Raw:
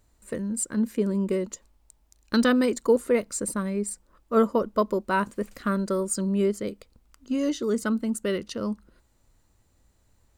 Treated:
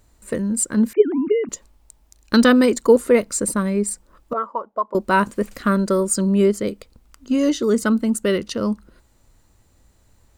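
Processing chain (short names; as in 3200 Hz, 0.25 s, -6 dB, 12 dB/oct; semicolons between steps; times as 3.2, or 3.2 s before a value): 0.93–1.49 sine-wave speech; 4.33–4.95 auto-wah 550–1200 Hz, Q 3.9, up, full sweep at -15.5 dBFS; gain +7.5 dB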